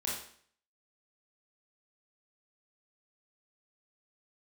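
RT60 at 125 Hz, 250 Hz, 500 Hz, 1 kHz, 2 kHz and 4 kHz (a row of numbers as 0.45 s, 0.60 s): 0.55 s, 0.60 s, 0.55 s, 0.55 s, 0.55 s, 0.55 s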